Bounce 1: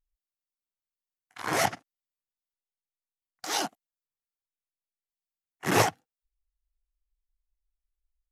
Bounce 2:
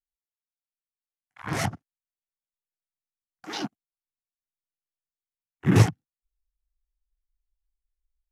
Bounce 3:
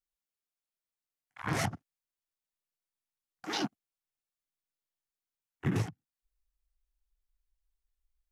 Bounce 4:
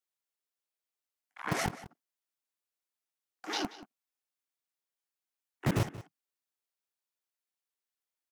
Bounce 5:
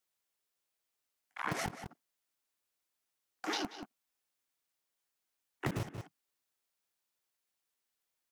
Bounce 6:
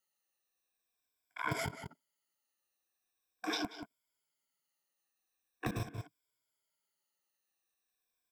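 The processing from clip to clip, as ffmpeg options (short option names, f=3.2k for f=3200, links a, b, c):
-af "afwtdn=0.0141,asubboost=boost=11:cutoff=200,volume=-2.5dB"
-af "acompressor=threshold=-27dB:ratio=16"
-filter_complex "[0:a]acrossover=split=230|3000[a][b][c];[a]acrusher=bits=4:mix=0:aa=0.000001[d];[d][b][c]amix=inputs=3:normalize=0,asplit=2[e][f];[f]adelay=180.8,volume=-16dB,highshelf=f=4k:g=-4.07[g];[e][g]amix=inputs=2:normalize=0"
-af "acompressor=threshold=-38dB:ratio=12,volume=5.5dB"
-af "afftfilt=real='re*pow(10,15/40*sin(2*PI*(1.7*log(max(b,1)*sr/1024/100)/log(2)-(-0.42)*(pts-256)/sr)))':imag='im*pow(10,15/40*sin(2*PI*(1.7*log(max(b,1)*sr/1024/100)/log(2)-(-0.42)*(pts-256)/sr)))':win_size=1024:overlap=0.75,volume=-3dB"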